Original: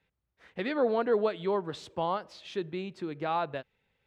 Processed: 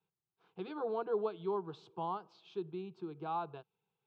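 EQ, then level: BPF 120–3100 Hz; fixed phaser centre 380 Hz, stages 8; -5.5 dB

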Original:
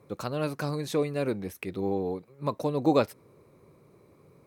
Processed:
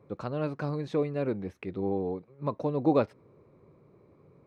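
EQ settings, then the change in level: tape spacing loss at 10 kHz 26 dB; 0.0 dB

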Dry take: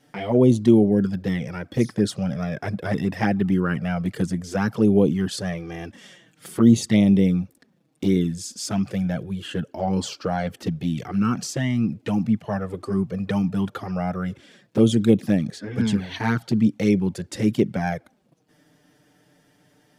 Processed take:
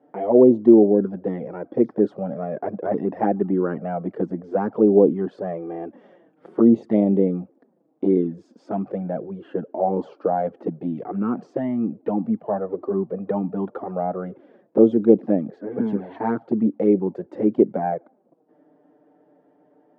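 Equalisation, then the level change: Butterworth band-pass 490 Hz, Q 0.84; +6.0 dB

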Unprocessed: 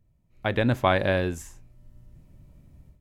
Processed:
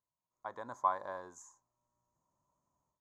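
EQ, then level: double band-pass 2600 Hz, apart 2.7 oct; high shelf 4500 Hz -7 dB; 0.0 dB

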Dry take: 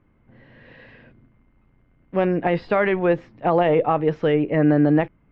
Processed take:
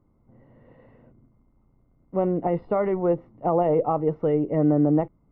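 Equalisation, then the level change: polynomial smoothing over 65 samples; -3.0 dB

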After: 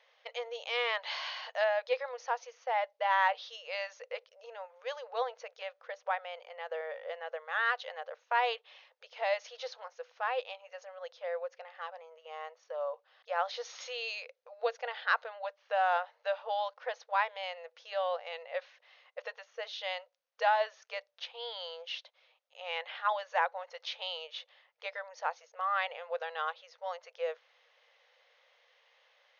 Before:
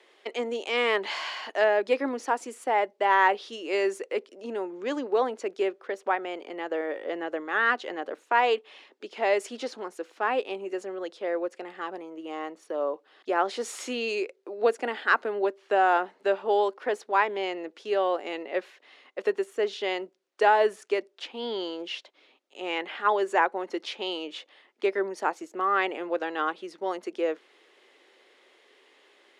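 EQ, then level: dynamic EQ 3800 Hz, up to +6 dB, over -50 dBFS, Q 2.4; brick-wall FIR band-pass 460–6700 Hz; -6.5 dB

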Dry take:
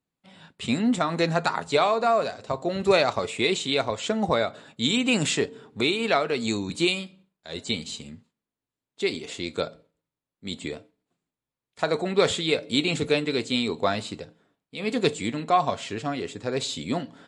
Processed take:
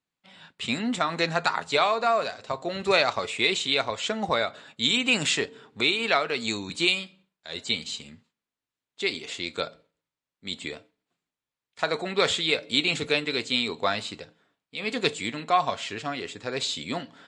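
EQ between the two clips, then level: LPF 8800 Hz 12 dB/oct; tilt shelf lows -6.5 dB; high shelf 4500 Hz -7.5 dB; 0.0 dB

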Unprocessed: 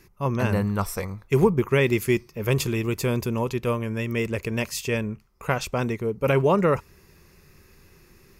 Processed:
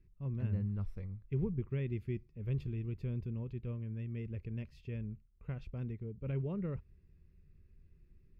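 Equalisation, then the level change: air absorption 390 m; passive tone stack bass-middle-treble 10-0-1; +2.5 dB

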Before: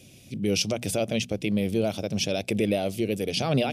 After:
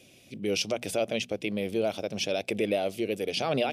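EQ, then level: tone controls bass -12 dB, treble -6 dB; 0.0 dB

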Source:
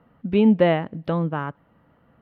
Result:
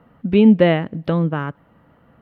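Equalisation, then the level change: dynamic EQ 860 Hz, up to -6 dB, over -34 dBFS, Q 1.2; +5.5 dB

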